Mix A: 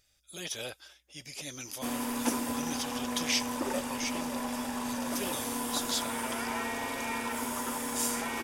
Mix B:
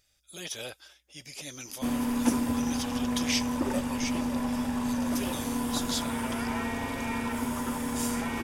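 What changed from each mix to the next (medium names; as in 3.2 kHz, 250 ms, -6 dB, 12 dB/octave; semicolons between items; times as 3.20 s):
background: add tone controls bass +13 dB, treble -4 dB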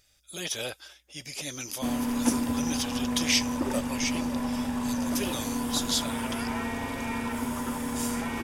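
speech +5.0 dB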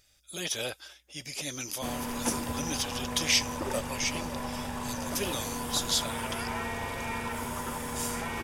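background: add peaking EQ 260 Hz -13 dB 0.38 oct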